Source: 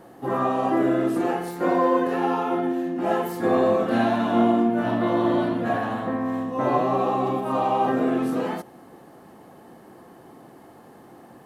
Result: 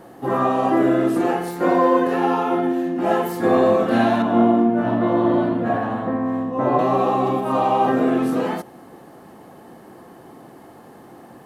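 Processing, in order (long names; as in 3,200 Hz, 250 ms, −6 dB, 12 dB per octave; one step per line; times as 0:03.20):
0:04.22–0:06.79: high-shelf EQ 2,300 Hz −11 dB
level +4 dB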